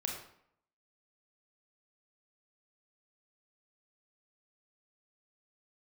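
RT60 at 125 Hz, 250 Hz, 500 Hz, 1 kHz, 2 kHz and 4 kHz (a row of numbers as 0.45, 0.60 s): 0.65, 0.70, 0.70, 0.70, 0.60, 0.50 s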